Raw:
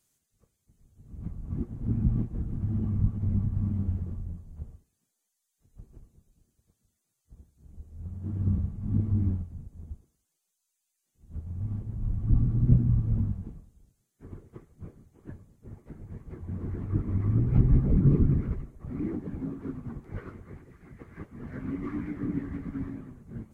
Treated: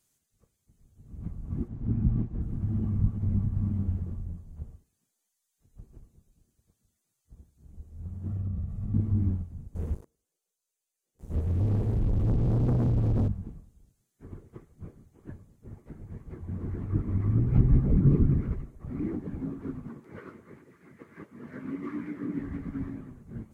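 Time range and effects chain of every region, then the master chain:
0:01.68–0:02.41: high-frequency loss of the air 78 metres + notch filter 510 Hz, Q 9.6
0:08.27–0:08.94: comb filter 1.6 ms, depth 56% + downward compressor 10 to 1, threshold −28 dBFS
0:09.75–0:13.28: parametric band 460 Hz +13 dB 0.81 octaves + downward compressor 5 to 1, threshold −26 dBFS + leveller curve on the samples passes 3
0:19.87–0:22.39: high-pass filter 200 Hz + notch filter 750 Hz, Q 6.9
whole clip: no processing

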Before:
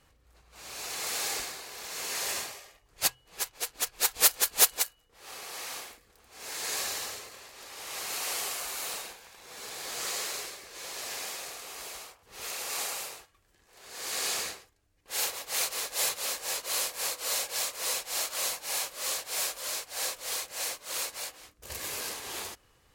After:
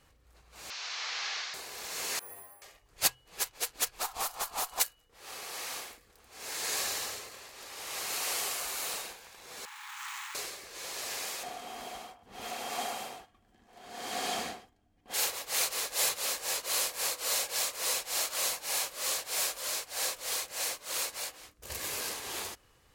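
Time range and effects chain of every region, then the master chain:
0:00.70–0:01.54: linear delta modulator 32 kbit/s, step −33 dBFS + high-pass filter 1,100 Hz
0:02.19–0:02.62: low-pass filter 1,200 Hz + bad sample-rate conversion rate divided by 4×, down none, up zero stuff + stiff-string resonator 95 Hz, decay 0.47 s, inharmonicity 0.002
0:03.99–0:04.80: flat-topped bell 930 Hz +12.5 dB 1.2 octaves + downward compressor 10 to 1, threshold −27 dBFS + tube saturation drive 22 dB, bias 0.35
0:09.65–0:10.35: running median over 9 samples + linear-phase brick-wall high-pass 800 Hz
0:11.43–0:15.14: high-shelf EQ 3,400 Hz −9.5 dB + hollow resonant body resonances 230/720/3,200 Hz, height 14 dB
whole clip: no processing

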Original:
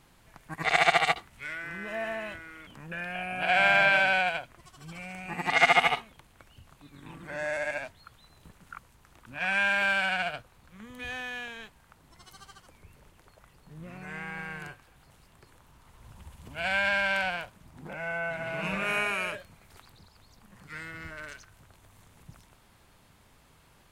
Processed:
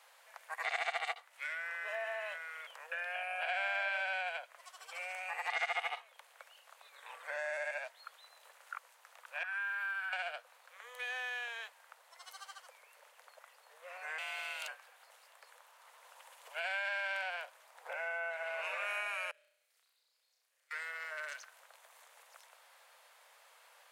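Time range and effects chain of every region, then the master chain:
0:09.43–0:10.13: high-pass filter 1,200 Hz 24 dB per octave + flat-topped bell 4,200 Hz −15 dB 2.5 octaves
0:14.18–0:14.68: high shelf with overshoot 2,400 Hz +9 dB, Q 3 + frequency shifter −100 Hz
0:19.31–0:20.71: guitar amp tone stack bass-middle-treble 10-0-1 + flutter between parallel walls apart 5.5 metres, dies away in 0.65 s + one half of a high-frequency compander encoder only
whole clip: Butterworth high-pass 490 Hz 72 dB per octave; parametric band 1,800 Hz +2.5 dB; downward compressor 3 to 1, threshold −38 dBFS

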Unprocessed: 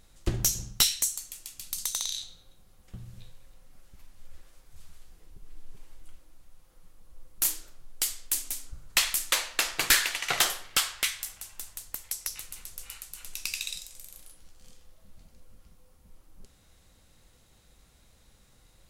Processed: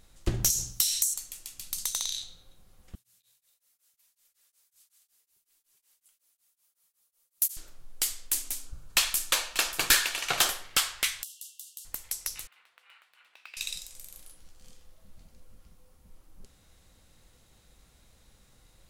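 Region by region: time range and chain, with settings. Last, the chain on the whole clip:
0:00.50–0:01.14: bass and treble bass −2 dB, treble +13 dB + mains-hum notches 50/100/150/200/250/300 Hz + downward compressor 5 to 1, threshold −23 dBFS
0:02.95–0:07.57: first difference + single-tap delay 270 ms −13 dB + tremolo along a rectified sine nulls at 5.4 Hz
0:08.55–0:10.50: notch filter 2,000 Hz, Q 9.3 + single-tap delay 588 ms −13.5 dB
0:11.23–0:11.85: double-tracking delay 13 ms −6.5 dB + downward compressor, threshold −37 dBFS + linear-phase brick-wall high-pass 2,700 Hz
0:12.47–0:13.57: phase distortion by the signal itself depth 0.11 ms + high-pass filter 1,100 Hz + high-frequency loss of the air 490 metres
whole clip: no processing

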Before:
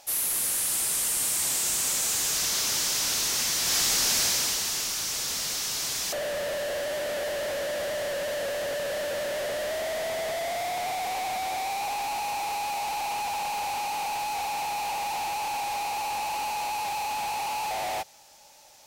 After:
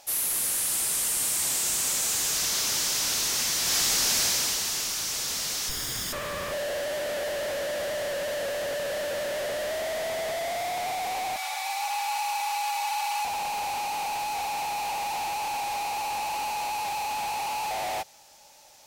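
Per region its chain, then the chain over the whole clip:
0:05.69–0:06.52: lower of the sound and its delayed copy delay 0.58 ms + low-shelf EQ 190 Hz +8 dB
0:11.36–0:13.25: high-pass filter 810 Hz 24 dB per octave + comb filter 3.5 ms, depth 78%
whole clip: no processing

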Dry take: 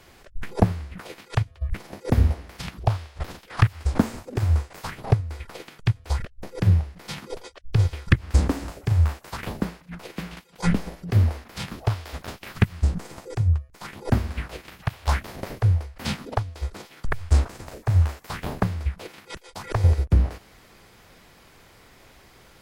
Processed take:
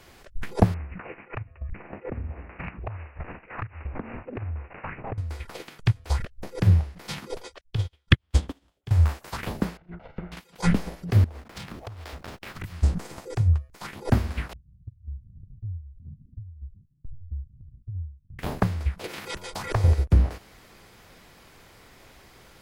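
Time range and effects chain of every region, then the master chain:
0:00.74–0:05.18: bad sample-rate conversion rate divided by 8×, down none, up filtered + downward compressor 8 to 1, threshold −29 dBFS
0:07.61–0:08.91: parametric band 3,300 Hz +11.5 dB 0.46 octaves + expander for the loud parts 2.5 to 1, over −35 dBFS
0:09.77–0:10.32: lower of the sound and its delayed copy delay 1.4 ms + treble cut that deepens with the level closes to 2,100 Hz, closed at −33.5 dBFS + head-to-tape spacing loss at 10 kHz 43 dB
0:11.24–0:12.64: downward compressor 16 to 1, threshold −33 dBFS + slack as between gear wheels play −44.5 dBFS
0:14.53–0:18.39: inverse Chebyshev low-pass filter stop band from 600 Hz, stop band 70 dB + downward compressor 2 to 1, threshold −43 dBFS
0:19.04–0:19.88: hum removal 89.4 Hz, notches 16 + upward compression, threshold −26 dBFS
whole clip: no processing

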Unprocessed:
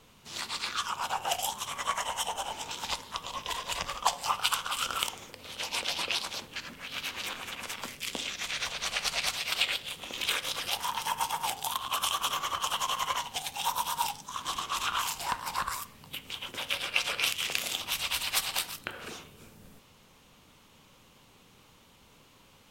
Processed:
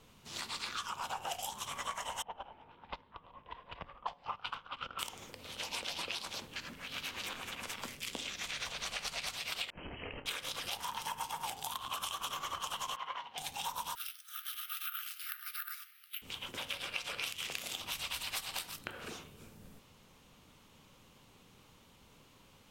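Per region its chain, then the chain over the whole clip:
0:02.22–0:04.99: noise gate −33 dBFS, range −11 dB + low-pass that shuts in the quiet parts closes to 1,700 Hz, open at −25 dBFS + high-frequency loss of the air 330 metres
0:09.70–0:10.26: voice inversion scrambler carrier 3,100 Hz + compressor whose output falls as the input rises −43 dBFS, ratio −0.5 + double-tracking delay 29 ms −12 dB
0:12.96–0:13.38: high-pass filter 800 Hz 6 dB per octave + high-frequency loss of the air 340 metres
0:13.95–0:16.22: linear-phase brick-wall high-pass 1,200 Hz + high-frequency loss of the air 130 metres + bad sample-rate conversion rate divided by 3×, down filtered, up zero stuff
whole clip: low-shelf EQ 420 Hz +3 dB; downward compressor 4 to 1, threshold −32 dBFS; level −4 dB

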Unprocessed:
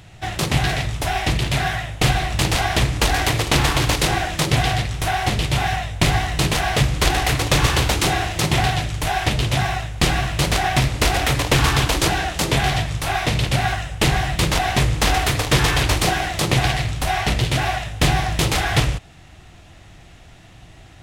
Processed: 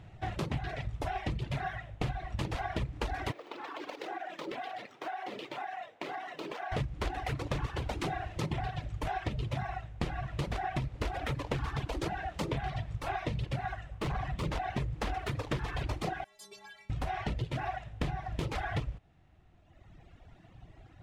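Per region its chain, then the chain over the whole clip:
0:03.32–0:06.72: running median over 5 samples + high-pass filter 290 Hz 24 dB per octave + downward compressor 8 to 1, threshold −24 dBFS
0:13.92–0:14.46: parametric band 1,100 Hz +7.5 dB 0.25 octaves + hard clipping −20 dBFS
0:16.24–0:16.90: bass and treble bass −14 dB, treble +12 dB + stiff-string resonator 200 Hz, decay 0.49 s, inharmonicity 0.008
whole clip: low-pass filter 1,100 Hz 6 dB per octave; reverb reduction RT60 1.8 s; downward compressor, threshold −25 dBFS; level −5.5 dB

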